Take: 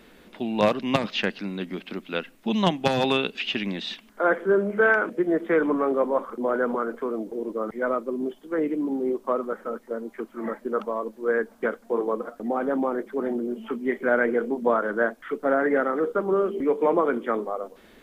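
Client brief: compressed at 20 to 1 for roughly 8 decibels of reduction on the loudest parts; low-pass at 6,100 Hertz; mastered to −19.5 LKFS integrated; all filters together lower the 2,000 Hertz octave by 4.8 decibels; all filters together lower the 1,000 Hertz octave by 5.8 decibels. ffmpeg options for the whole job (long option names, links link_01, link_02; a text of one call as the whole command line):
ffmpeg -i in.wav -af "lowpass=6100,equalizer=frequency=1000:width_type=o:gain=-7,equalizer=frequency=2000:width_type=o:gain=-3.5,acompressor=threshold=-25dB:ratio=20,volume=12dB" out.wav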